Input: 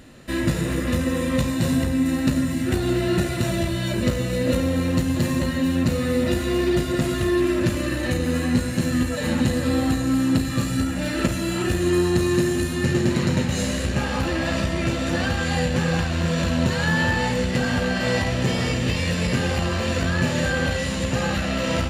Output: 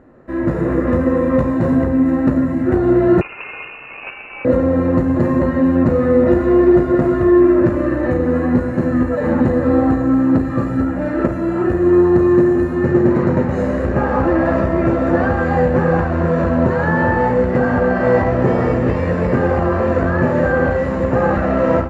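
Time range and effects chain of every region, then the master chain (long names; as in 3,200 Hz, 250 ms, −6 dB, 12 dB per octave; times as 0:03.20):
0:03.21–0:04.45: running median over 25 samples + voice inversion scrambler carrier 2,800 Hz
whole clip: automatic gain control; drawn EQ curve 190 Hz 0 dB, 370 Hz +8 dB, 1,200 Hz +5 dB, 1,900 Hz −3 dB, 3,200 Hz −22 dB, 6,100 Hz −22 dB, 8,600 Hz −26 dB; level −4 dB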